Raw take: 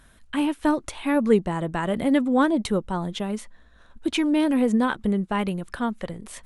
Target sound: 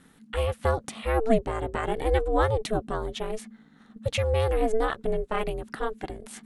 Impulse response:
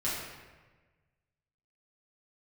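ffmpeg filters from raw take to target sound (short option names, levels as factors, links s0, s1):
-af "aeval=exprs='val(0)*sin(2*PI*220*n/s)':c=same"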